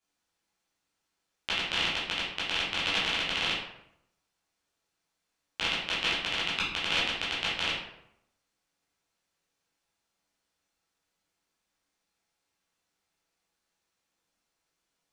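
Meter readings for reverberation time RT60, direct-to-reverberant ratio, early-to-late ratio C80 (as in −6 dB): 0.80 s, −9.5 dB, 5.5 dB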